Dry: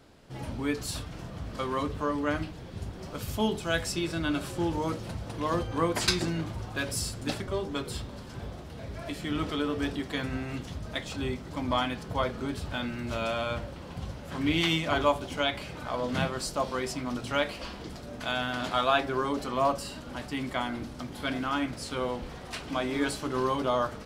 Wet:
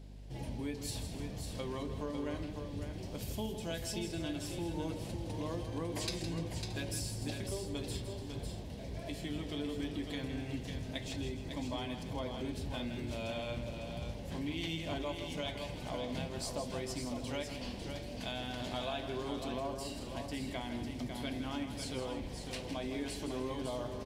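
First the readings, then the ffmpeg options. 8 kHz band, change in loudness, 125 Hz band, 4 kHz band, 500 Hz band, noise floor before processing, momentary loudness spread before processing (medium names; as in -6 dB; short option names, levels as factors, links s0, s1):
-6.0 dB, -8.5 dB, -5.0 dB, -8.5 dB, -8.5 dB, -43 dBFS, 13 LU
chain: -filter_complex "[0:a]equalizer=f=1300:w=2.3:g=-15,acompressor=threshold=0.0224:ratio=5,aeval=exprs='val(0)+0.00501*(sin(2*PI*50*n/s)+sin(2*PI*2*50*n/s)/2+sin(2*PI*3*50*n/s)/3+sin(2*PI*4*50*n/s)/4+sin(2*PI*5*50*n/s)/5)':c=same,asplit=2[s0][s1];[s1]aecho=0:1:162|298|551|625:0.335|0.119|0.473|0.141[s2];[s0][s2]amix=inputs=2:normalize=0,volume=0.668"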